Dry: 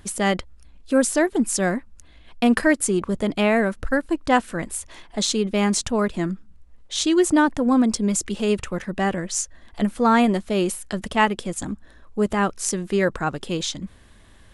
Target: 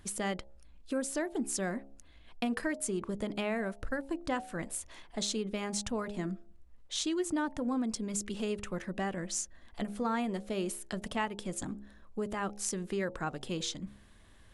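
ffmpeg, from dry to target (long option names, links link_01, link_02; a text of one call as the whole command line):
ffmpeg -i in.wav -af "acompressor=threshold=-23dB:ratio=3,bandreject=frequency=68.36:width_type=h:width=4,bandreject=frequency=136.72:width_type=h:width=4,bandreject=frequency=205.08:width_type=h:width=4,bandreject=frequency=273.44:width_type=h:width=4,bandreject=frequency=341.8:width_type=h:width=4,bandreject=frequency=410.16:width_type=h:width=4,bandreject=frequency=478.52:width_type=h:width=4,bandreject=frequency=546.88:width_type=h:width=4,bandreject=frequency=615.24:width_type=h:width=4,bandreject=frequency=683.6:width_type=h:width=4,bandreject=frequency=751.96:width_type=h:width=4,bandreject=frequency=820.32:width_type=h:width=4,bandreject=frequency=888.68:width_type=h:width=4,volume=-8dB" out.wav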